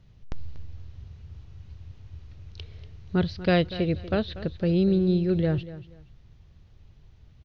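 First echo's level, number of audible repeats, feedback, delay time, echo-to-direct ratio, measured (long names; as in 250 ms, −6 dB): −15.5 dB, 2, 24%, 239 ms, −15.0 dB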